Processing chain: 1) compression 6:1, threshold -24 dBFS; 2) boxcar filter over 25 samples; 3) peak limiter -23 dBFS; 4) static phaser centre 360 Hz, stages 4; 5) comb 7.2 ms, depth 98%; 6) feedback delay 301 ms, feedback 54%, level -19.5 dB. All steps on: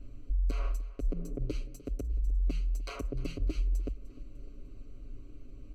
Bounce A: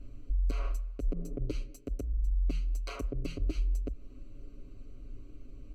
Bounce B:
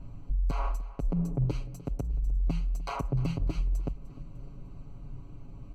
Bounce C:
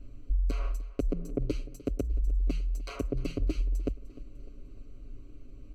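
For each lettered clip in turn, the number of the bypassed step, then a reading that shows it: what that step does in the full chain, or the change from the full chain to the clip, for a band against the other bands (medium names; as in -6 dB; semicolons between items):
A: 6, echo-to-direct -18.0 dB to none; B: 4, 1 kHz band +9.5 dB; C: 3, crest factor change +2.0 dB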